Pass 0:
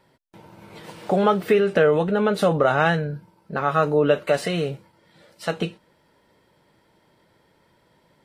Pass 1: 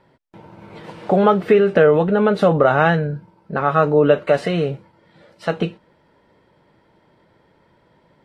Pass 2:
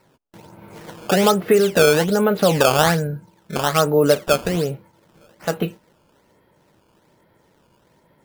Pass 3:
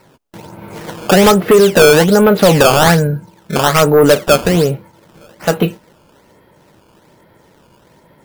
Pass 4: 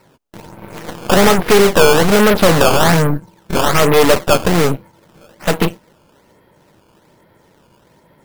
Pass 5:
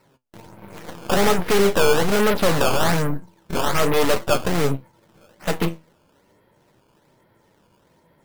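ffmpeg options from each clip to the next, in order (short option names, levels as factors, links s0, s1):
-af "aemphasis=mode=reproduction:type=75fm,volume=1.58"
-af "acrusher=samples=13:mix=1:aa=0.000001:lfo=1:lforange=20.8:lforate=1.2,volume=0.841"
-af "aeval=exprs='0.708*sin(PI/2*2*val(0)/0.708)':c=same"
-af "aeval=exprs='0.75*(cos(1*acos(clip(val(0)/0.75,-1,1)))-cos(1*PI/2))+0.133*(cos(6*acos(clip(val(0)/0.75,-1,1)))-cos(6*PI/2))+0.299*(cos(8*acos(clip(val(0)/0.75,-1,1)))-cos(8*PI/2))':c=same,volume=0.708"
-af "flanger=delay=6.8:depth=5.7:regen=71:speed=0.43:shape=triangular,volume=0.668"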